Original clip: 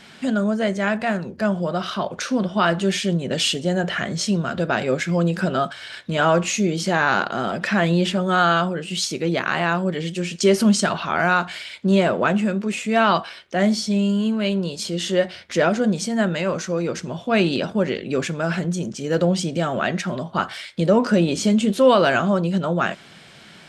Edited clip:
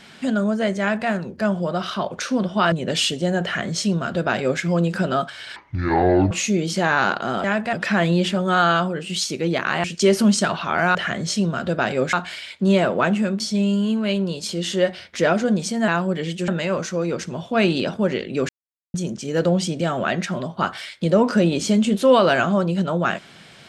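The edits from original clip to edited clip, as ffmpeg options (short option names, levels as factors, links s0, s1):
-filter_complex "[0:a]asplit=14[s0][s1][s2][s3][s4][s5][s6][s7][s8][s9][s10][s11][s12][s13];[s0]atrim=end=2.722[s14];[s1]atrim=start=3.148:end=5.994[s15];[s2]atrim=start=5.99:end=6.41,asetpts=PTS-STARTPTS,asetrate=24696,aresample=44100[s16];[s3]atrim=start=6.406:end=7.542[s17];[s4]atrim=start=0.798:end=1.092[s18];[s5]atrim=start=7.538:end=9.652[s19];[s6]atrim=start=10.248:end=11.362[s20];[s7]atrim=start=3.858:end=5.042[s21];[s8]atrim=start=11.358:end=12.632[s22];[s9]atrim=start=13.758:end=16.242[s23];[s10]atrim=start=9.648:end=10.252[s24];[s11]atrim=start=16.238:end=18.25,asetpts=PTS-STARTPTS,afade=t=out:st=2.008:d=0.004:c=hsin[s25];[s12]atrim=start=18.25:end=18.7,asetpts=PTS-STARTPTS,volume=0[s26];[s13]atrim=start=18.7,asetpts=PTS-STARTPTS,afade=t=in:d=0.004:c=hsin[s27];[s14][s15]acrossfade=d=0.004:c1=hsin:c2=hsin[s28];[s28][s16]acrossfade=d=0.004:c1=hsin:c2=hsin[s29];[s29][s17]acrossfade=d=0.004:c1=hsin:c2=hsin[s30];[s30][s18]acrossfade=d=0.004:c1=hsin:c2=hsin[s31];[s31][s19]acrossfade=d=0.004:c1=hsin:c2=hsin[s32];[s32][s20]acrossfade=d=0.004:c1=hsin:c2=hsin[s33];[s33][s21]acrossfade=d=0.004:c1=hsin:c2=hsin[s34];[s34][s22]acrossfade=d=0.004:c1=hsin:c2=hsin[s35];[s35][s23]acrossfade=d=0.004:c1=hsin:c2=hsin[s36];[s36][s24]acrossfade=d=0.004:c1=hsin:c2=hsin[s37];[s25][s26][s27]concat=n=3:v=0:a=1[s38];[s37][s38]acrossfade=d=0.004:c1=hsin:c2=hsin"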